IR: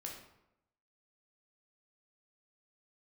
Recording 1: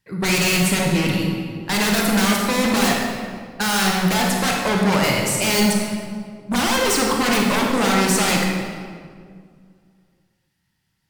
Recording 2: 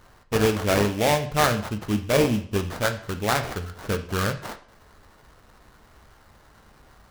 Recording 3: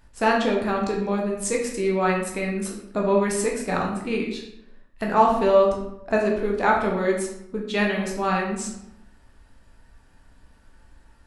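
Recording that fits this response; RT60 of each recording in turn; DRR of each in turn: 3; 2.0, 0.55, 0.85 seconds; −1.0, 6.5, −1.0 decibels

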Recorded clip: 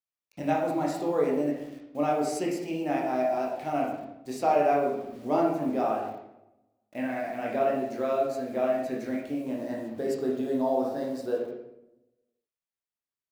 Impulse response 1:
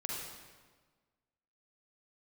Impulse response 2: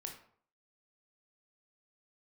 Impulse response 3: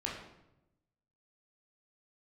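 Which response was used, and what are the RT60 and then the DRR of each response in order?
3; 1.4, 0.55, 0.90 seconds; −3.5, 2.0, −3.5 decibels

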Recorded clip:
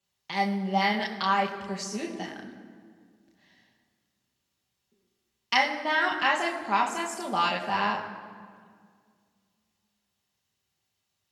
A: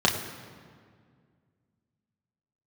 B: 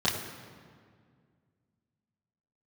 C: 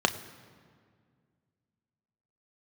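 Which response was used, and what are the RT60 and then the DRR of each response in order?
A; 2.0, 2.0, 2.0 seconds; −1.5, −8.5, 7.5 decibels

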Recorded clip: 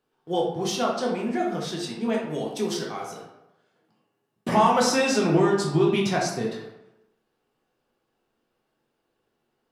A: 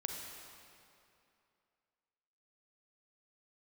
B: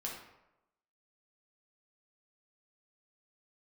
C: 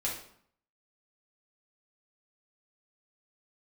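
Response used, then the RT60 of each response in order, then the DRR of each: B; 2.6, 0.95, 0.60 seconds; 1.5, −3.0, −5.0 decibels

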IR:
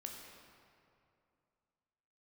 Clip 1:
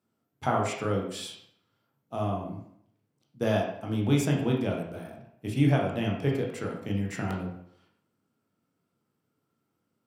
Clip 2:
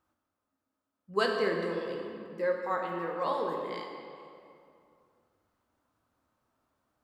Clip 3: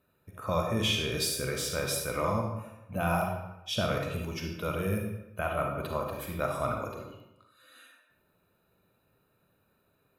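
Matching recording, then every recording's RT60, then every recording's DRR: 2; 0.70, 2.6, 0.90 seconds; −1.0, 0.5, 1.5 decibels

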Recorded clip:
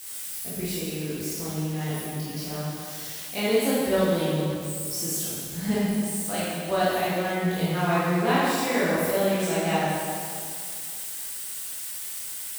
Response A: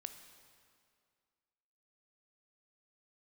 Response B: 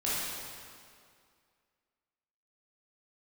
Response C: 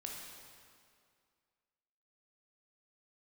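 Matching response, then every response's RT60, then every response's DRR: B; 2.2, 2.2, 2.2 seconds; 7.5, −9.5, −1.5 decibels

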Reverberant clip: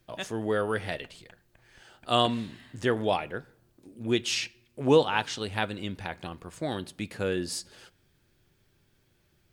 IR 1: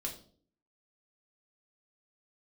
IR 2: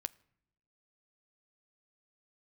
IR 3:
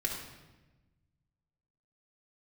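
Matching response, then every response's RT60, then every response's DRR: 2; 0.50 s, non-exponential decay, 1.1 s; −1.0, 14.5, −2.0 decibels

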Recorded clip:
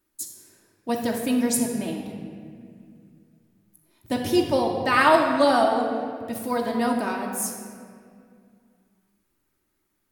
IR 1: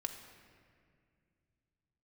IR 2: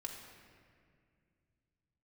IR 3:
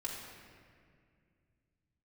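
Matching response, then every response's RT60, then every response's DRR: 2; 2.2, 2.2, 2.2 seconds; 4.5, 0.0, −5.0 decibels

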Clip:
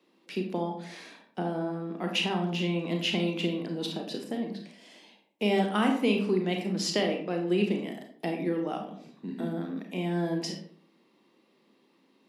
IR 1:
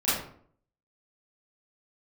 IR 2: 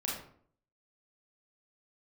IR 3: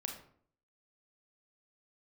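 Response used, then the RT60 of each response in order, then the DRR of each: 3; 0.55, 0.55, 0.55 seconds; −13.0, −4.5, 2.5 decibels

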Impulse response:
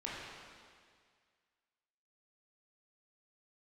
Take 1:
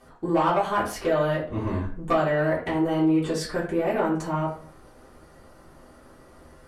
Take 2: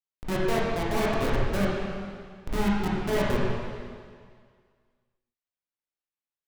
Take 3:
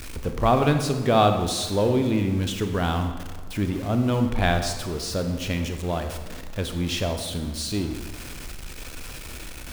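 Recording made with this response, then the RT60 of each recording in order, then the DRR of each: 2; 0.50, 1.9, 1.3 seconds; −8.5, −7.0, 6.0 decibels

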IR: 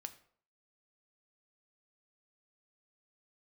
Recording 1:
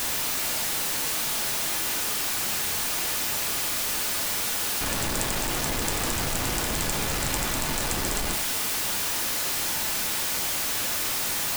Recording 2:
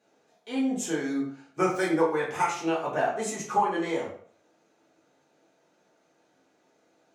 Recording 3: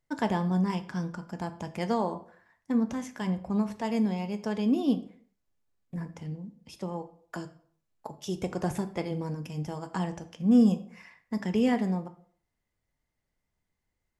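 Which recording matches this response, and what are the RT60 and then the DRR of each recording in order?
3; 0.55, 0.55, 0.55 seconds; 3.5, −6.5, 8.0 decibels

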